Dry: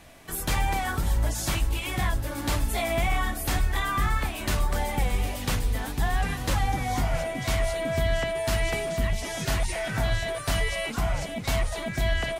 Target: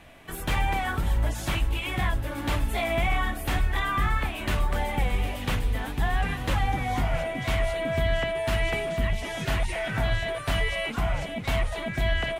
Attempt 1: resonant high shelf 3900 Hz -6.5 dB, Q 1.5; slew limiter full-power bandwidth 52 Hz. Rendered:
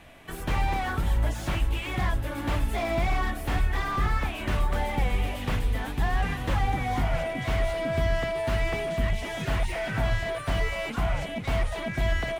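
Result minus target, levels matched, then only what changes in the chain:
slew limiter: distortion +23 dB
change: slew limiter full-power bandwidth 164 Hz

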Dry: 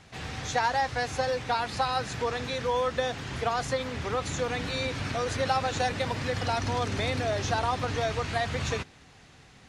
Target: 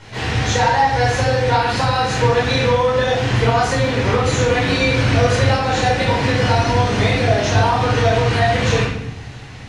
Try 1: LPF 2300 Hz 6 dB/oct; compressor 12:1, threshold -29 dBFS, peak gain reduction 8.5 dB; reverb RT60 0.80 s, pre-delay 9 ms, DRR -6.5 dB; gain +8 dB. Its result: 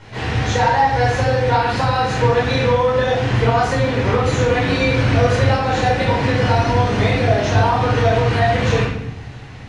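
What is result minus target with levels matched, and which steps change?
8000 Hz band -5.5 dB
change: LPF 5800 Hz 6 dB/oct

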